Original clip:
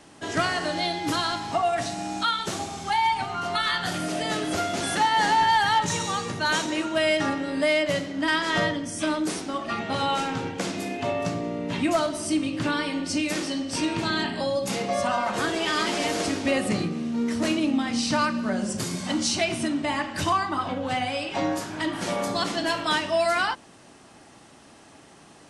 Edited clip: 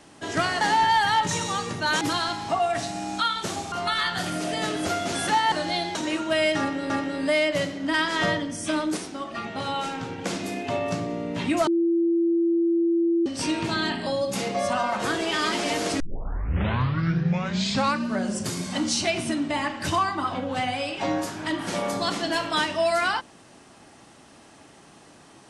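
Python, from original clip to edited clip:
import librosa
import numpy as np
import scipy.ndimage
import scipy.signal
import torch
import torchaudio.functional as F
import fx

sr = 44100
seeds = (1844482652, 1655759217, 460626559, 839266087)

y = fx.edit(x, sr, fx.swap(start_s=0.61, length_s=0.43, other_s=5.2, other_length_s=1.4),
    fx.cut(start_s=2.75, length_s=0.65),
    fx.repeat(start_s=7.24, length_s=0.31, count=2),
    fx.clip_gain(start_s=9.31, length_s=1.21, db=-3.5),
    fx.bleep(start_s=12.01, length_s=1.59, hz=337.0, db=-18.5),
    fx.tape_start(start_s=16.34, length_s=2.01), tone=tone)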